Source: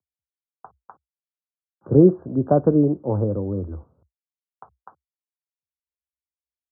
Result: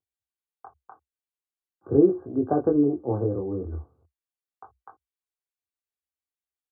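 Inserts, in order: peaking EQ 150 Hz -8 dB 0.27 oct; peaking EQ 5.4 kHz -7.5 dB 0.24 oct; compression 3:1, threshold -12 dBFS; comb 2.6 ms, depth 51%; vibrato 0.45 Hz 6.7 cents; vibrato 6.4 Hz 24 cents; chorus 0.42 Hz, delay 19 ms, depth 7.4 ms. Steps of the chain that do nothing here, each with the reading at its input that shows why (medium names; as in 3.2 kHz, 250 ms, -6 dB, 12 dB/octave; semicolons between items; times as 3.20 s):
peaking EQ 5.4 kHz: input has nothing above 910 Hz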